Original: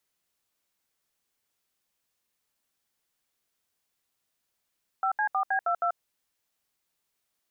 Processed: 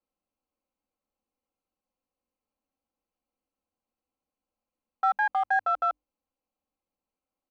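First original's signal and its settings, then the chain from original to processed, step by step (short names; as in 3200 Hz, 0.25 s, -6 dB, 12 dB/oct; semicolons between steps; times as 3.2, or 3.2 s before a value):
DTMF "5C4B22", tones 87 ms, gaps 71 ms, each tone -26 dBFS
Wiener smoothing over 25 samples; notches 50/100/150/200/250/300 Hz; comb 3.8 ms, depth 73%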